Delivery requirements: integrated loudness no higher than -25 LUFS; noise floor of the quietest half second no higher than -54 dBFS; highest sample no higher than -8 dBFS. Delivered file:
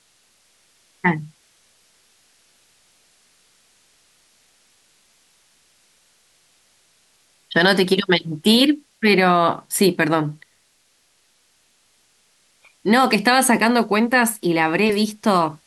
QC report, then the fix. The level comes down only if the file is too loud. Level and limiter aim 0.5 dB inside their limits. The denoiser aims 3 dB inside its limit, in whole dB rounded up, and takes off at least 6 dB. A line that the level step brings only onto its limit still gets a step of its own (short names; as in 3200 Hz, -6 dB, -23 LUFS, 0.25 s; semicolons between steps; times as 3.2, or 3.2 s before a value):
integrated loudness -18.0 LUFS: fail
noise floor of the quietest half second -62 dBFS: OK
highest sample -5.5 dBFS: fail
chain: gain -7.5 dB